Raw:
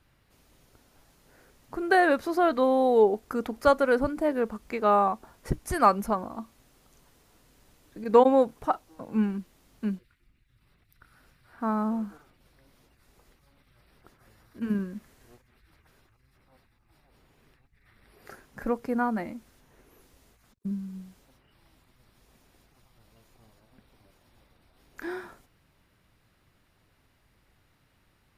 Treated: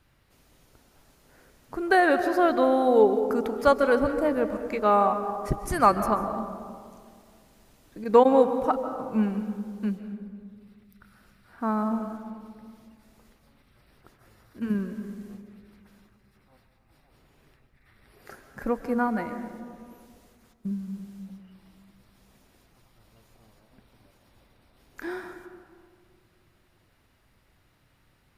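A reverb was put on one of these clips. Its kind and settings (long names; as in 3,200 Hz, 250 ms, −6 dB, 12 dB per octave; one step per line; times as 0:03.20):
comb and all-pass reverb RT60 2.1 s, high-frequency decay 0.3×, pre-delay 105 ms, DRR 8.5 dB
level +1 dB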